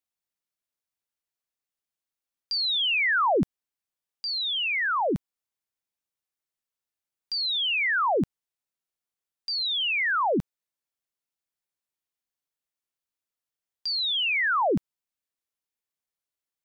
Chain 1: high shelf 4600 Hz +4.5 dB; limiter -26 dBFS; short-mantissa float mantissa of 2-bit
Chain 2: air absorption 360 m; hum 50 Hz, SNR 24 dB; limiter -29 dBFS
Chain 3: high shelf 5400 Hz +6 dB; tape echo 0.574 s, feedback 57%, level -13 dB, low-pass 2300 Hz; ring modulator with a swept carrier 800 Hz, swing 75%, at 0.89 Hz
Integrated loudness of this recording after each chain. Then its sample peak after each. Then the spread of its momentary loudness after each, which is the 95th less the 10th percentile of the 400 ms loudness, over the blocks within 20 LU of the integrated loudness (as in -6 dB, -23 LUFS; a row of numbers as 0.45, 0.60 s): -28.0, -33.0, -26.5 LUFS; -26.5, -29.0, -17.0 dBFS; 9, 14, 19 LU